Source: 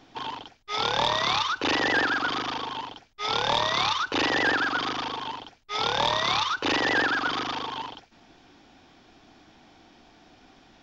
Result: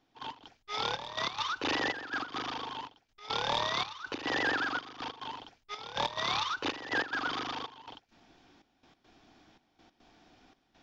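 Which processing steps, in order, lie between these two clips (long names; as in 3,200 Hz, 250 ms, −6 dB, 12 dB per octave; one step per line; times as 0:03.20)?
gate pattern "..x.xxxxx" 141 BPM −12 dB
level −6.5 dB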